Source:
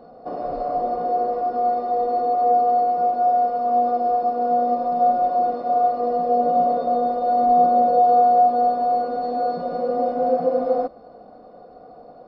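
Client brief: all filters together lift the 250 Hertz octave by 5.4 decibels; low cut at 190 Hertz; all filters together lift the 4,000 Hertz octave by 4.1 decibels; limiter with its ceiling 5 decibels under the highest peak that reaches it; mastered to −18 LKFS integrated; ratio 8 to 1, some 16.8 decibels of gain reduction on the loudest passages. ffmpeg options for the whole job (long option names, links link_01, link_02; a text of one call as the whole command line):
ffmpeg -i in.wav -af "highpass=190,equalizer=frequency=250:width_type=o:gain=7,equalizer=frequency=4000:width_type=o:gain=4.5,acompressor=threshold=-30dB:ratio=8,volume=16dB,alimiter=limit=-10.5dB:level=0:latency=1" out.wav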